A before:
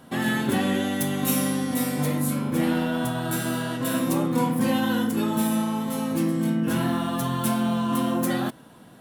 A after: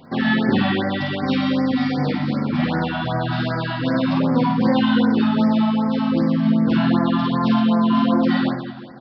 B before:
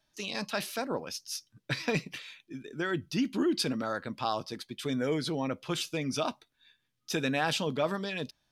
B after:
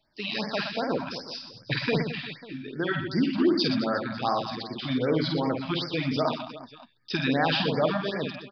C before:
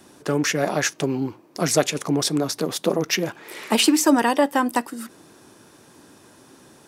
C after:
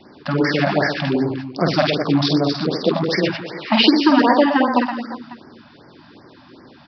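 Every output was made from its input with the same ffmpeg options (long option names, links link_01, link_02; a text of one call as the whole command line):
ffmpeg -i in.wav -af "aresample=11025,aresample=44100,aecho=1:1:50|120|218|355.2|547.3:0.631|0.398|0.251|0.158|0.1,afftfilt=real='re*(1-between(b*sr/1024,380*pow(3300/380,0.5+0.5*sin(2*PI*2.6*pts/sr))/1.41,380*pow(3300/380,0.5+0.5*sin(2*PI*2.6*pts/sr))*1.41))':imag='im*(1-between(b*sr/1024,380*pow(3300/380,0.5+0.5*sin(2*PI*2.6*pts/sr))/1.41,380*pow(3300/380,0.5+0.5*sin(2*PI*2.6*pts/sr))*1.41))':win_size=1024:overlap=0.75,volume=4dB" out.wav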